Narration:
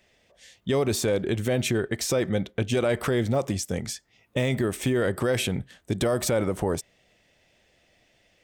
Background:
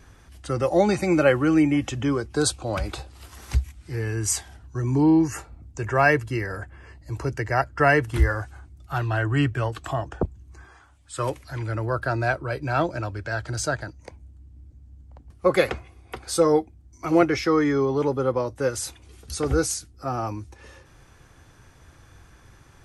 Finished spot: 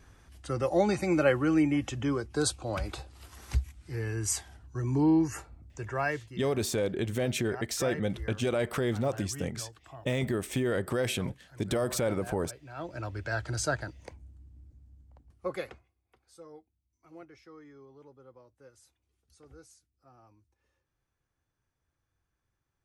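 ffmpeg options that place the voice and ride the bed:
-filter_complex "[0:a]adelay=5700,volume=-5dB[a];[1:a]volume=10.5dB,afade=t=out:st=5.48:d=0.92:silence=0.188365,afade=t=in:st=12.76:d=0.45:silence=0.149624,afade=t=out:st=14.2:d=1.74:silence=0.0446684[b];[a][b]amix=inputs=2:normalize=0"

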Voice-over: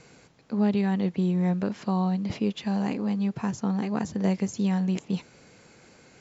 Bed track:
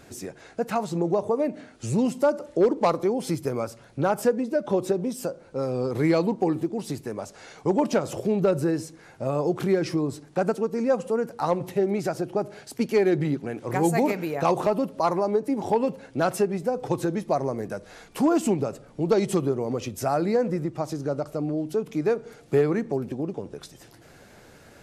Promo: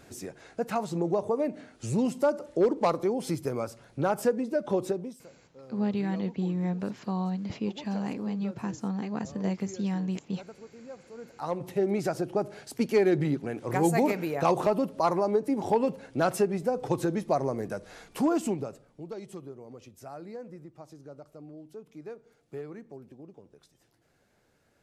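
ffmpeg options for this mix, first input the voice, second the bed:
-filter_complex "[0:a]adelay=5200,volume=-5dB[a];[1:a]volume=16.5dB,afade=t=out:st=4.83:d=0.38:silence=0.11885,afade=t=in:st=11.14:d=0.79:silence=0.1,afade=t=out:st=17.97:d=1.13:silence=0.149624[b];[a][b]amix=inputs=2:normalize=0"

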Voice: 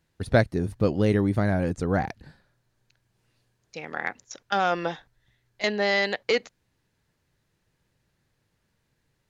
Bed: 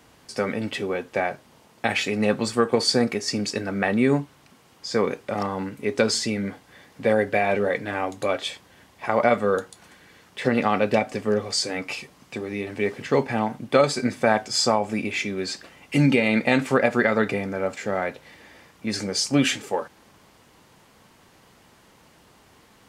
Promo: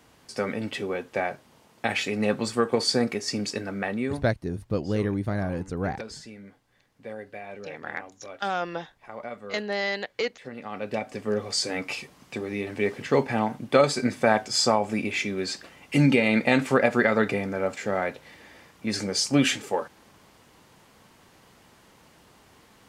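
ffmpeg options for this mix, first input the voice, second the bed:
-filter_complex "[0:a]adelay=3900,volume=-4.5dB[a];[1:a]volume=14dB,afade=t=out:st=3.5:d=0.91:silence=0.177828,afade=t=in:st=10.62:d=1.11:silence=0.141254[b];[a][b]amix=inputs=2:normalize=0"

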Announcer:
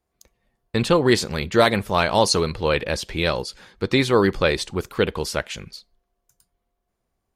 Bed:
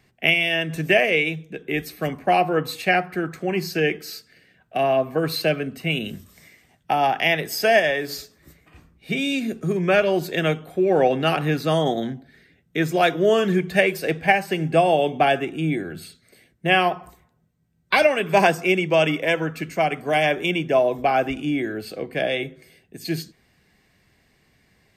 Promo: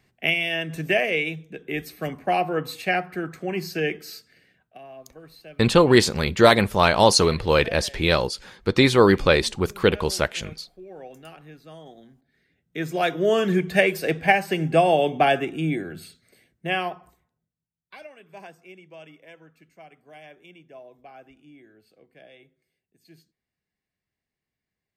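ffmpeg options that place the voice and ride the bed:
-filter_complex "[0:a]adelay=4850,volume=2dB[a];[1:a]volume=19dB,afade=t=out:st=4.48:d=0.31:silence=0.105925,afade=t=in:st=12.18:d=1.44:silence=0.0707946,afade=t=out:st=15.37:d=2.36:silence=0.0501187[b];[a][b]amix=inputs=2:normalize=0"

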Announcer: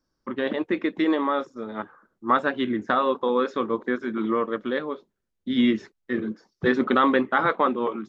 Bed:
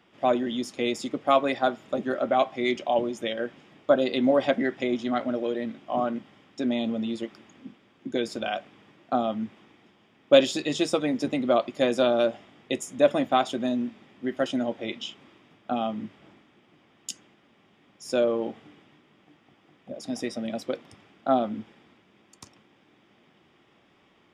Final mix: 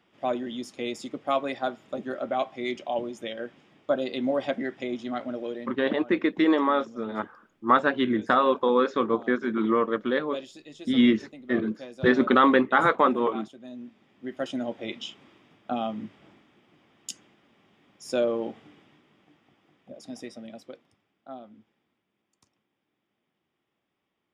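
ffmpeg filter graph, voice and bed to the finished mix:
-filter_complex "[0:a]adelay=5400,volume=1dB[a];[1:a]volume=12dB,afade=t=out:st=5.51:d=0.37:silence=0.211349,afade=t=in:st=13.6:d=1.33:silence=0.141254,afade=t=out:st=18.86:d=2.16:silence=0.133352[b];[a][b]amix=inputs=2:normalize=0"

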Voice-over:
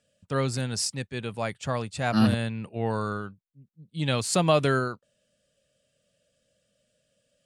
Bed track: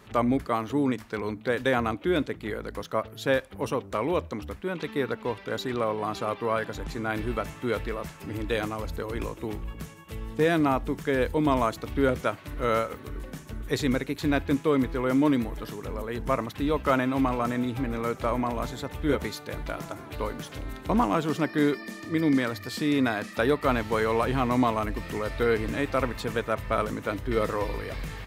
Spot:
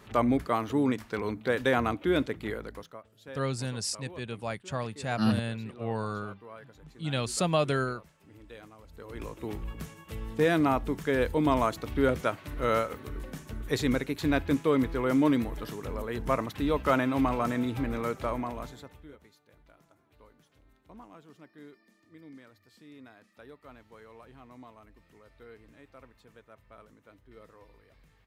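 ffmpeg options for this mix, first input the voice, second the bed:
-filter_complex "[0:a]adelay=3050,volume=-4.5dB[a];[1:a]volume=17.5dB,afade=t=out:st=2.45:d=0.53:silence=0.112202,afade=t=in:st=8.89:d=0.75:silence=0.11885,afade=t=out:st=17.92:d=1.19:silence=0.0562341[b];[a][b]amix=inputs=2:normalize=0"

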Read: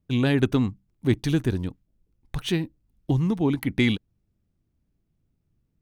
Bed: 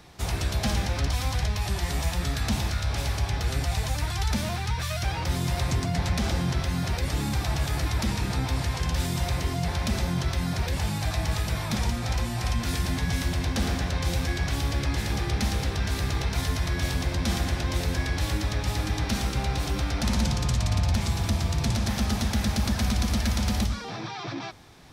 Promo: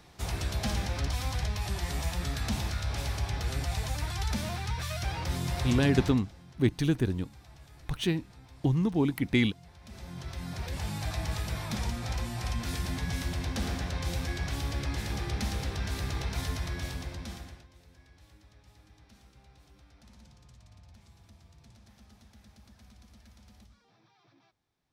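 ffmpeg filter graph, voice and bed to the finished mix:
-filter_complex "[0:a]adelay=5550,volume=-3.5dB[a];[1:a]volume=15dB,afade=t=out:st=6.01:d=0.2:silence=0.0891251,afade=t=in:st=9.81:d=1.18:silence=0.1,afade=t=out:st=16.49:d=1.19:silence=0.0562341[b];[a][b]amix=inputs=2:normalize=0"

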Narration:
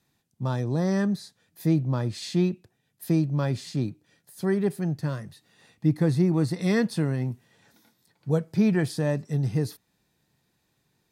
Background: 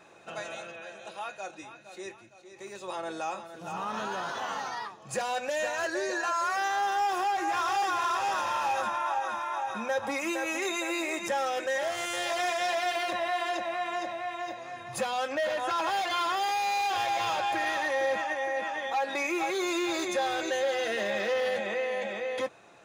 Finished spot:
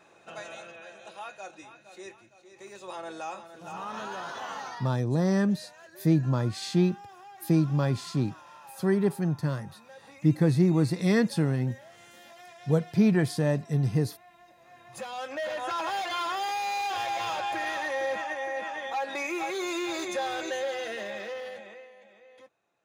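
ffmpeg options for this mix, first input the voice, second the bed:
-filter_complex "[0:a]adelay=4400,volume=0dB[a];[1:a]volume=15.5dB,afade=t=out:st=4.7:d=0.3:silence=0.133352,afade=t=in:st=14.51:d=1.14:silence=0.11885,afade=t=out:st=20.47:d=1.46:silence=0.1[b];[a][b]amix=inputs=2:normalize=0"

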